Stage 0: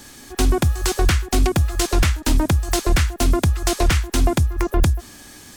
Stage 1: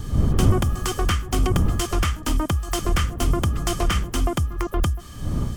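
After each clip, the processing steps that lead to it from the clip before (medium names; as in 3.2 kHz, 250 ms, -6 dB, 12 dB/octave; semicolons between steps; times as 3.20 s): wind noise 120 Hz -20 dBFS; dynamic bell 4 kHz, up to -8 dB, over -47 dBFS, Q 4.4; small resonant body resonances 1.2/3.1 kHz, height 15 dB, ringing for 45 ms; trim -5 dB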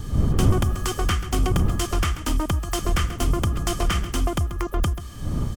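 delay 136 ms -13.5 dB; trim -1 dB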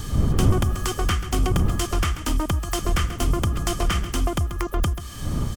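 tape noise reduction on one side only encoder only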